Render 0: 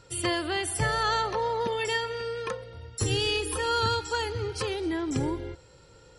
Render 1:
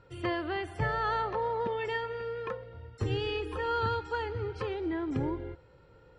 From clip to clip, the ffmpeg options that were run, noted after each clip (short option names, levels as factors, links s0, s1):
-af "lowpass=2100,volume=0.708"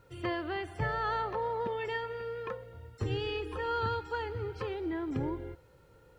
-af "acrusher=bits=11:mix=0:aa=0.000001,volume=0.794"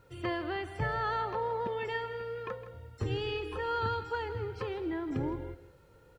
-af "aecho=1:1:162:0.211"